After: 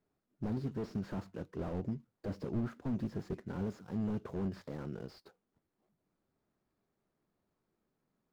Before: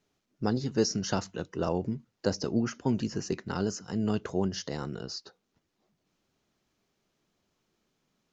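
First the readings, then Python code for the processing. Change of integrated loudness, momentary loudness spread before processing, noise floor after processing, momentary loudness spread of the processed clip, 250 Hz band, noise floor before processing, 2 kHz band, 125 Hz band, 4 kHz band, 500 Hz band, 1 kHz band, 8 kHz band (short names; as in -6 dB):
-8.0 dB, 9 LU, -85 dBFS, 6 LU, -7.0 dB, -80 dBFS, -12.5 dB, -5.5 dB, -22.0 dB, -10.5 dB, -12.0 dB, n/a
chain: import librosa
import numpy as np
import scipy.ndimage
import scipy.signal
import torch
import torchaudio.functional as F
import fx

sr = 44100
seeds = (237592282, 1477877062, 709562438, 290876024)

y = scipy.ndimage.median_filter(x, 15, mode='constant')
y = fx.slew_limit(y, sr, full_power_hz=11.0)
y = F.gain(torch.from_numpy(y), -4.5).numpy()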